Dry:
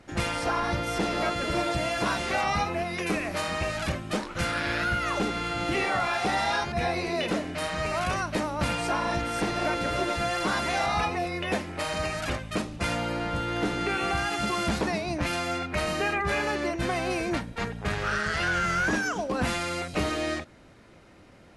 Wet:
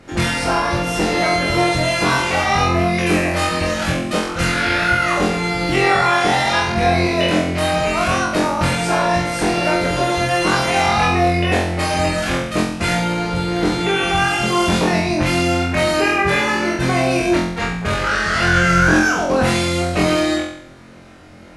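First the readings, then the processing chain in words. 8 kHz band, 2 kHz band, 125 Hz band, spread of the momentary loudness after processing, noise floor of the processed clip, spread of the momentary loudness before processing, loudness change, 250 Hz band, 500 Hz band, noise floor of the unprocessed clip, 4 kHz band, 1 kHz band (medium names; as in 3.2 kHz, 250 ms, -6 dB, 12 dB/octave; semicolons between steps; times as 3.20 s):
+11.0 dB, +11.0 dB, +12.5 dB, 5 LU, -36 dBFS, 4 LU, +11.0 dB, +12.0 dB, +11.0 dB, -52 dBFS, +11.0 dB, +10.5 dB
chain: flutter echo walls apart 3.9 m, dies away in 0.63 s; trim +7 dB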